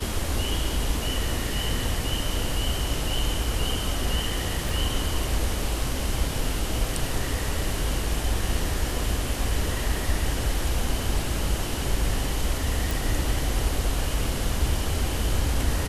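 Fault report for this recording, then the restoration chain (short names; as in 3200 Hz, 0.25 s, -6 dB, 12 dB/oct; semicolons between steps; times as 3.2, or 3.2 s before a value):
4.69 pop
12.91 pop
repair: de-click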